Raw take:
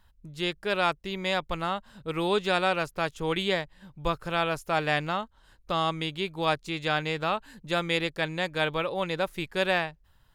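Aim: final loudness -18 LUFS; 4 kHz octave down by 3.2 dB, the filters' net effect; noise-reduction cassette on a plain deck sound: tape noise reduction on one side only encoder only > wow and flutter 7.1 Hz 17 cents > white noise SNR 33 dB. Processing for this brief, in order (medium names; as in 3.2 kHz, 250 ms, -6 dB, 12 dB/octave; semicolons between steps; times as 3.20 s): peaking EQ 4 kHz -4 dB; tape noise reduction on one side only encoder only; wow and flutter 7.1 Hz 17 cents; white noise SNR 33 dB; trim +11.5 dB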